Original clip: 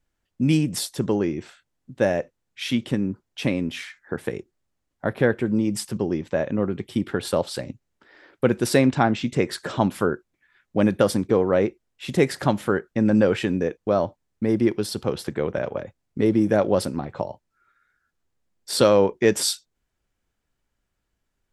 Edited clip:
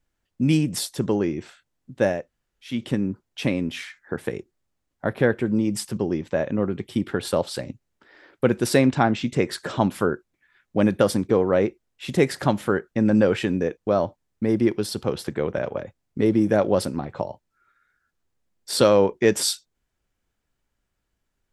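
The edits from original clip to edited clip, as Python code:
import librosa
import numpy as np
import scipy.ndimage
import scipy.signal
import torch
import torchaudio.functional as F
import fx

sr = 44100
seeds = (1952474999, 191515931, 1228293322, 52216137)

y = fx.edit(x, sr, fx.room_tone_fill(start_s=2.19, length_s=0.54, crossfade_s=0.24), tone=tone)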